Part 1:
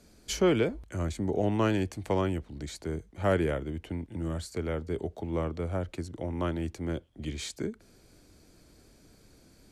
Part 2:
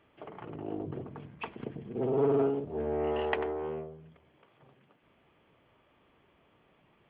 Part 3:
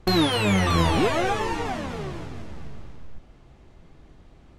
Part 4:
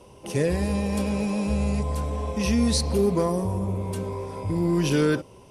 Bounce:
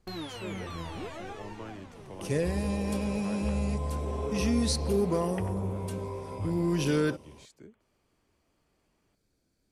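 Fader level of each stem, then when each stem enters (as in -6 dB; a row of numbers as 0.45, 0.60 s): -17.5, -10.5, -18.0, -5.0 dB; 0.00, 2.05, 0.00, 1.95 s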